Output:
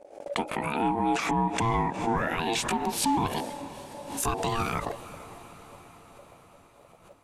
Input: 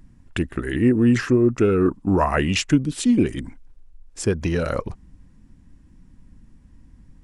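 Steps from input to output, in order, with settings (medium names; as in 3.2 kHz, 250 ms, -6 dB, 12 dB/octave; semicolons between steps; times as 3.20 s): pitch bend over the whole clip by +7.5 st starting unshifted; gate -44 dBFS, range -31 dB; bass shelf 470 Hz -5.5 dB; in parallel at +2 dB: compression, threshold -29 dBFS, peak gain reduction 13 dB; on the sum: peak limiter -16.5 dBFS, peak gain reduction 10 dB; ring modulator 570 Hz; on a send: echo that smears into a reverb 456 ms, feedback 63%, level -15.5 dB; on the sum: swell ahead of each attack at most 80 dB/s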